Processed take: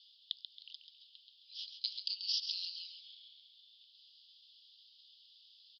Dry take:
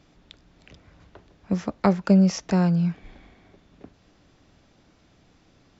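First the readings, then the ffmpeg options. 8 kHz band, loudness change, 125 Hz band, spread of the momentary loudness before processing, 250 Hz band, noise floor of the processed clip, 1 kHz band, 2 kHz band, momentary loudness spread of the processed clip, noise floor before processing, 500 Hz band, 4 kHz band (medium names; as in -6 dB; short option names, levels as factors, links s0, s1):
no reading, -17.5 dB, under -40 dB, 11 LU, under -40 dB, -65 dBFS, under -40 dB, -22.0 dB, 25 LU, -60 dBFS, under -40 dB, +6.0 dB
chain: -af "asuperpass=centerf=3900:order=12:qfactor=1.9,aecho=1:1:136|272|408|544|680:0.376|0.154|0.0632|0.0259|0.0106,volume=2.82"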